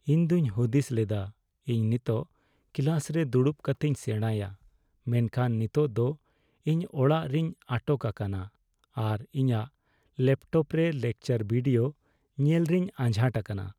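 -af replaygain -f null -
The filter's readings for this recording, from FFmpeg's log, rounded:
track_gain = +8.7 dB
track_peak = 0.144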